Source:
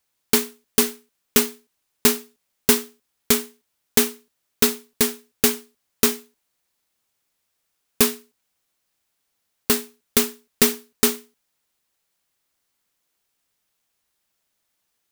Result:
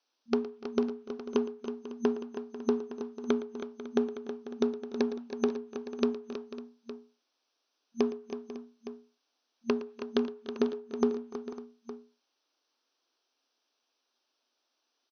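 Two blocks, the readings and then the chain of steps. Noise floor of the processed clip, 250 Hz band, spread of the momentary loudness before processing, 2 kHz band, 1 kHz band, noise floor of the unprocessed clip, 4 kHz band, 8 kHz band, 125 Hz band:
−81 dBFS, −4.5 dB, 8 LU, −18.0 dB, −9.0 dB, −75 dBFS, −21.5 dB, −32.0 dB, −15.0 dB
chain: brick-wall band-pass 230–6,200 Hz
treble cut that deepens with the level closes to 640 Hz, closed at −23 dBFS
parametric band 2,000 Hz −10.5 dB 0.44 octaves
downward compressor 2.5 to 1, threshold −25 dBFS, peak gain reduction 6 dB
multi-tap delay 114/294/321/494/552/863 ms −16.5/−19.5/−10/−15.5/−17.5/−14.5 dB

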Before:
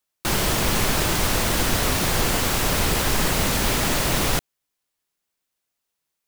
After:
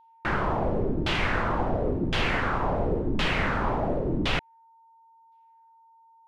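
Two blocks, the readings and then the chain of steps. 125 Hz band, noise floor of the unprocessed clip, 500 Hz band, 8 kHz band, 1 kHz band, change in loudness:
−4.0 dB, −81 dBFS, −1.5 dB, −27.5 dB, −2.5 dB, −6.0 dB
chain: auto-filter low-pass saw down 0.94 Hz 260–3,400 Hz
steady tone 910 Hz −50 dBFS
level −4.5 dB

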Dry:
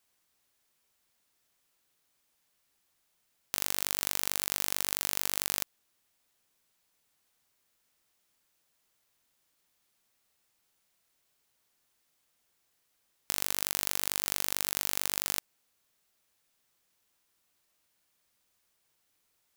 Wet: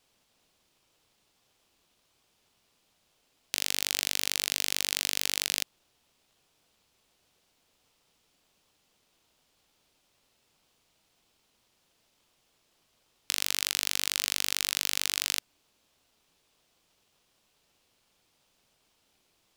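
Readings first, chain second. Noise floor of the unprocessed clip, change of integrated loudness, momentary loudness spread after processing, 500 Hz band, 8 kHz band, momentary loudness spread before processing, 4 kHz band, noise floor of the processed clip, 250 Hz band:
−76 dBFS, +2.5 dB, 4 LU, −2.0 dB, +2.5 dB, 4 LU, +7.5 dB, −72 dBFS, −1.5 dB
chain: meter weighting curve D
in parallel at −4 dB: decimation without filtering 20×
on the sum: level −3 dB

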